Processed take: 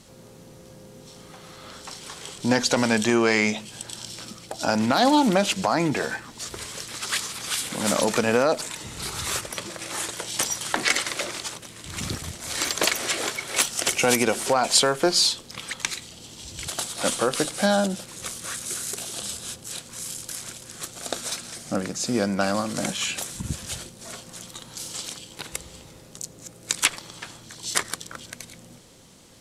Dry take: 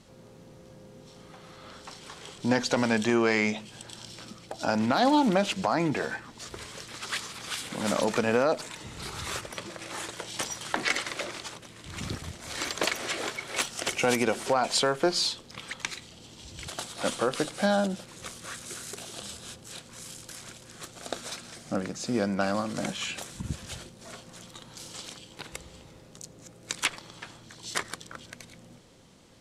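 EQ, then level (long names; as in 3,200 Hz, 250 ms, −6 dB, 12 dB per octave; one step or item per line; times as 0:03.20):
high-shelf EQ 6,200 Hz +11 dB
+3.5 dB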